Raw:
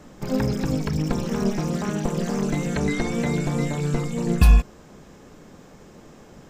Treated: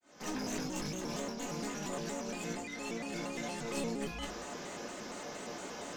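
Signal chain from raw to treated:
fade in at the beginning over 0.77 s
high-pass filter 780 Hz 6 dB per octave
high shelf with overshoot 7,200 Hz −6 dB, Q 3
compressor whose output falls as the input rises −41 dBFS, ratio −1
asymmetric clip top −41 dBFS
rectangular room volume 160 cubic metres, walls furnished, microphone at 2 metres
wrong playback speed 44.1 kHz file played as 48 kHz
pitch modulation by a square or saw wave square 4.3 Hz, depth 160 cents
level −2.5 dB

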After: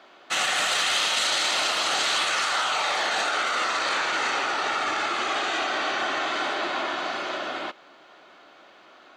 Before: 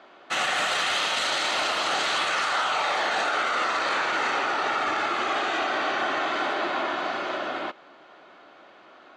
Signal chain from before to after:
high-shelf EQ 3,400 Hz +10 dB
level −2 dB

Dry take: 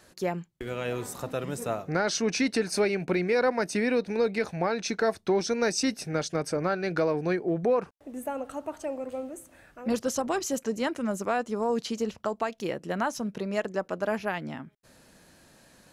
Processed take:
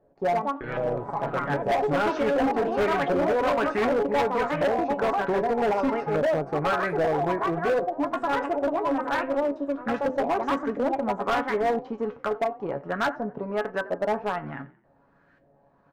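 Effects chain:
mu-law and A-law mismatch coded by A
delay with pitch and tempo change per echo 155 ms, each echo +4 semitones, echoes 2
hum removal 127.8 Hz, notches 4
auto-filter low-pass saw up 1.3 Hz 560–1,800 Hz
tuned comb filter 140 Hz, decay 0.16 s, harmonics all, mix 80%
echo with shifted repeats 88 ms, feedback 36%, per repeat +34 Hz, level −19.5 dB
hard clipping −29 dBFS, distortion −10 dB
level +9 dB

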